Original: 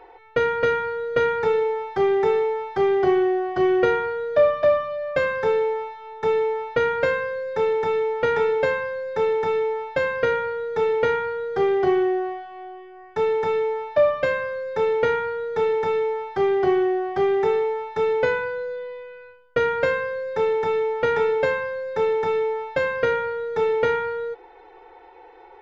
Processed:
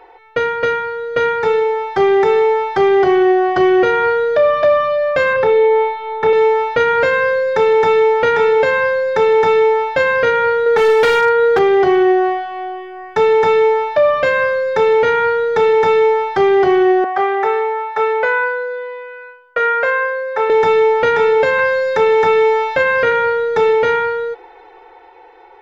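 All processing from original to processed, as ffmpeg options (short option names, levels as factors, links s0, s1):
-filter_complex "[0:a]asettb=1/sr,asplit=3[s0][s1][s2];[s0]atrim=end=5.334[s3];[s1]atrim=start=5.33:end=6.33,asetpts=PTS-STARTPTS,afade=t=in:d=0.004:c=qsin,afade=t=out:st=0.996:d=0.004:c=qsin,lowpass=3100,asplit=2[s4][s5];[s5]adelay=32,volume=0.596[s6];[s4][s6]amix=inputs=2:normalize=0,atrim=end_sample=44100[s7];[s2]atrim=start=6.326[s8];[s3][s7]acrossfade=d=0.004:c1=hsin:c2=qsin[s9];[s9][s8]acrossfade=d=0.004:c1=qsin:c2=hsin,asettb=1/sr,asplit=3[s10][s11][s12];[s10]atrim=end=10.664[s13];[s11]atrim=start=10.66:end=11.59,asetpts=PTS-STARTPTS,afade=t=in:d=0.004:c=qsin,afade=t=out:st=0.926:d=0.004:c=qsin,bass=f=250:g=-5,treble=f=4000:g=-6,acontrast=21,asoftclip=type=hard:threshold=0.15[s14];[s12]atrim=start=11.586[s15];[s13][s14]acrossfade=d=0.004:c1=hsin:c2=qsin[s16];[s16][s15]acrossfade=d=0.004:c1=qsin:c2=hsin,asettb=1/sr,asplit=3[s17][s18][s19];[s17]atrim=end=17.044[s20];[s18]atrim=start=17.04:end=20.5,asetpts=PTS-STARTPTS,afade=t=in:d=0.004:c=qsin,afade=t=out:st=3.456:d=0.004:c=qsin,acrossover=split=560 2000:gain=0.0891 1 0.2[s21][s22][s23];[s21][s22][s23]amix=inputs=3:normalize=0,bandreject=f=920:w=14[s24];[s19]atrim=start=20.496[s25];[s20][s24]acrossfade=d=0.004:c1=hsin:c2=qsin[s26];[s26][s25]acrossfade=d=0.004:c1=qsin:c2=hsin,asettb=1/sr,asplit=3[s27][s28][s29];[s27]atrim=end=21.594[s30];[s28]atrim=start=21.59:end=23.12,asetpts=PTS-STARTPTS,afade=t=in:d=0.004:c=qsin,afade=t=out:st=1.526:d=0.004:c=qsin,acrossover=split=2700[s31][s32];[s32]acompressor=threshold=0.00224:ratio=4:attack=1:release=60[s33];[s31][s33]amix=inputs=2:normalize=0,highshelf=f=2600:g=10[s34];[s29]atrim=start=23.116[s35];[s30][s34]acrossfade=d=0.004:c1=hsin:c2=qsin[s36];[s36][s35]acrossfade=d=0.004:c1=qsin:c2=hsin,lowshelf=f=420:g=-6,dynaudnorm=f=230:g=17:m=3.76,alimiter=limit=0.266:level=0:latency=1:release=110,volume=1.88"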